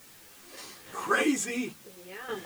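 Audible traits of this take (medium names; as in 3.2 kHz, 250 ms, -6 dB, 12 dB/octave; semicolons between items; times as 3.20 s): random-step tremolo 3.5 Hz, depth 80%; a quantiser's noise floor 10-bit, dither triangular; a shimmering, thickened sound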